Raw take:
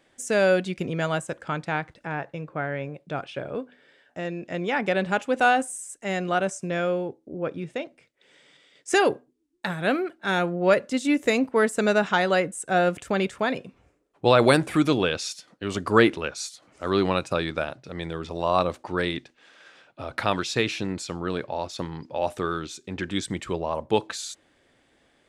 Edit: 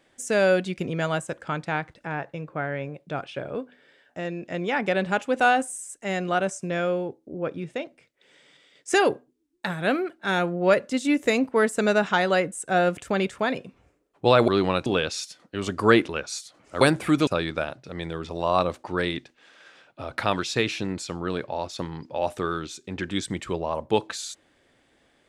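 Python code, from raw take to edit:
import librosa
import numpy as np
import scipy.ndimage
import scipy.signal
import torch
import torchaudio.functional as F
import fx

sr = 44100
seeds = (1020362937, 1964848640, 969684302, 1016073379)

y = fx.edit(x, sr, fx.swap(start_s=14.48, length_s=0.46, other_s=16.89, other_length_s=0.38), tone=tone)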